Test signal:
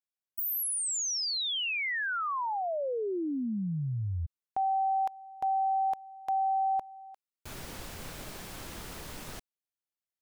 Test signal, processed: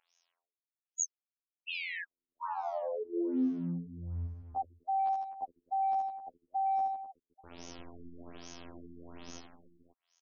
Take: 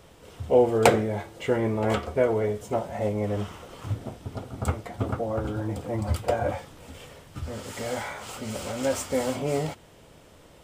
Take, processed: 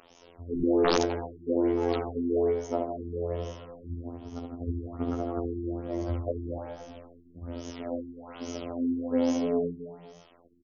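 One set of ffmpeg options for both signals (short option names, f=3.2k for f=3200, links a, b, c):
-filter_complex "[0:a]equalizer=f=6.1k:t=o:w=0.65:g=3,acrossover=split=660|1900[a][b][c];[a]aeval=exprs='sgn(val(0))*max(abs(val(0))-0.00299,0)':c=same[d];[d][b][c]amix=inputs=3:normalize=0,aresample=22050,aresample=44100,afftfilt=real='hypot(re,im)*cos(PI*b)':imag='0':win_size=2048:overlap=0.75,asplit=2[e][f];[f]aecho=0:1:70|154|254.8|375.8|520.9:0.631|0.398|0.251|0.158|0.1[g];[e][g]amix=inputs=2:normalize=0,aeval=exprs='(mod(3.16*val(0)+1,2)-1)/3.16':c=same,equalizer=f=125:t=o:w=1:g=-11,equalizer=f=250:t=o:w=1:g=7,equalizer=f=2k:t=o:w=1:g=-5,equalizer=f=4k:t=o:w=1:g=-3,equalizer=f=8k:t=o:w=1:g=7,acompressor=mode=upward:threshold=-38dB:ratio=2.5:attack=1.3:release=189:knee=2.83:detection=peak,afftfilt=real='re*lt(b*sr/1024,390*pow(6900/390,0.5+0.5*sin(2*PI*1.2*pts/sr)))':imag='im*lt(b*sr/1024,390*pow(6900/390,0.5+0.5*sin(2*PI*1.2*pts/sr)))':win_size=1024:overlap=0.75,volume=-1.5dB"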